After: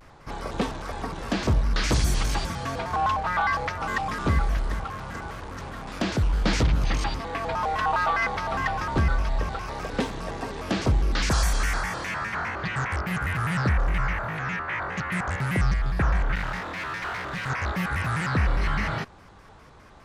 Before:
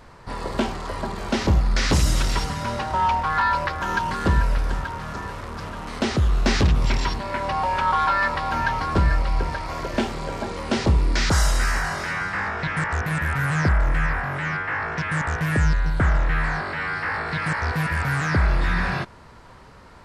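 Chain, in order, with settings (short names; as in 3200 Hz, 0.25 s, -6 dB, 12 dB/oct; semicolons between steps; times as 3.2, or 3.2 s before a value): 16.35–17.5 one-sided clip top -29 dBFS; shaped vibrato square 4.9 Hz, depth 250 cents; gain -3.5 dB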